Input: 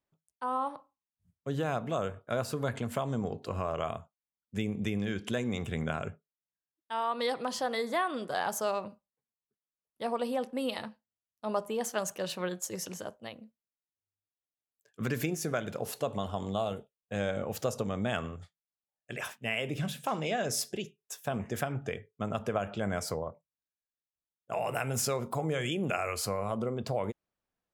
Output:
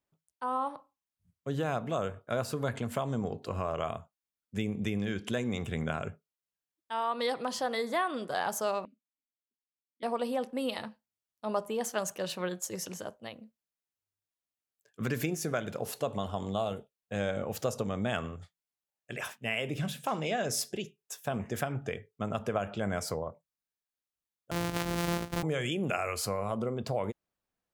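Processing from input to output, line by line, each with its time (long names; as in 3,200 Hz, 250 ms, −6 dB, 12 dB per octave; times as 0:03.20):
0:08.85–0:10.03: formant filter i
0:24.51–0:25.43: samples sorted by size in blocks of 256 samples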